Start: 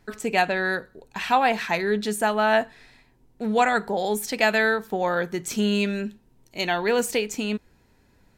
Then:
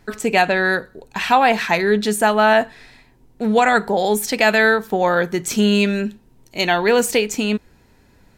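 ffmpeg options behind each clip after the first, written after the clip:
-af "alimiter=level_in=3.16:limit=0.891:release=50:level=0:latency=1,volume=0.708"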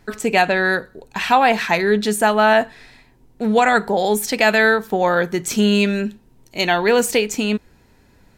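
-af anull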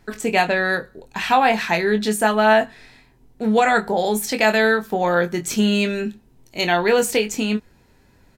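-filter_complex "[0:a]asplit=2[s0][s1];[s1]adelay=23,volume=0.422[s2];[s0][s2]amix=inputs=2:normalize=0,volume=0.75"

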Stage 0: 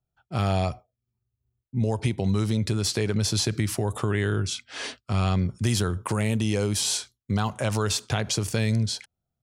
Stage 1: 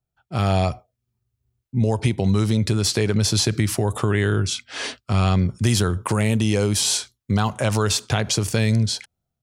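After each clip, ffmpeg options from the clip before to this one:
-af "dynaudnorm=f=140:g=5:m=1.78"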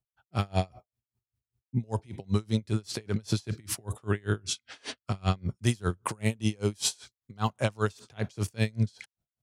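-af "aeval=exprs='val(0)*pow(10,-34*(0.5-0.5*cos(2*PI*5.1*n/s))/20)':c=same,volume=0.708"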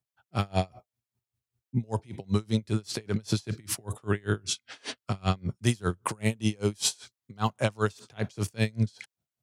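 -af "highpass=88,volume=1.19"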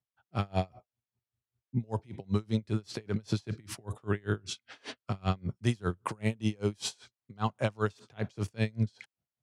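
-af "aemphasis=mode=reproduction:type=50kf,volume=0.708"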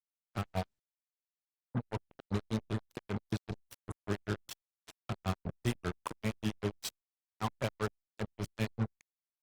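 -af "acrusher=bits=4:mix=0:aa=0.5,volume=0.562" -ar 48000 -c:a libopus -b:a 20k

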